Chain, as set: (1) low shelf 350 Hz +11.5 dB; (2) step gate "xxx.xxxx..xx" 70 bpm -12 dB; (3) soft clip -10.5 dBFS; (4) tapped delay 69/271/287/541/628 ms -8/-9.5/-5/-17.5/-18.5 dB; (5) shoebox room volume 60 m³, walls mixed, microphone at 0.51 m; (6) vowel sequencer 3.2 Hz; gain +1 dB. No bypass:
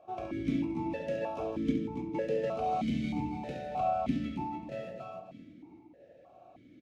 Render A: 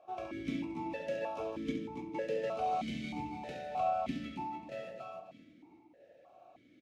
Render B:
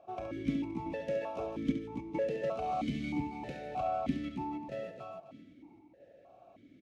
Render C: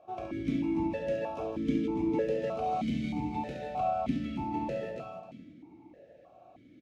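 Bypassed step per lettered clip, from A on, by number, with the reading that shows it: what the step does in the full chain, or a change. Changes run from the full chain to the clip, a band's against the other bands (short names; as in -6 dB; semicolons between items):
1, 125 Hz band -7.0 dB; 5, 2 kHz band +2.5 dB; 2, momentary loudness spread change -2 LU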